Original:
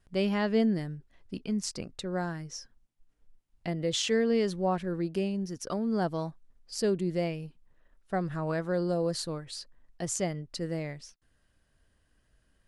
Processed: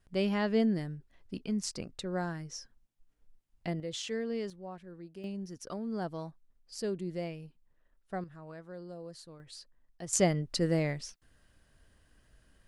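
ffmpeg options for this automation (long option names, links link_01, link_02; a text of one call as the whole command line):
ffmpeg -i in.wav -af "asetnsamples=nb_out_samples=441:pad=0,asendcmd='3.8 volume volume -9dB;4.5 volume volume -16dB;5.24 volume volume -7dB;8.24 volume volume -16dB;9.4 volume volume -8dB;10.13 volume volume 5dB',volume=-2dB" out.wav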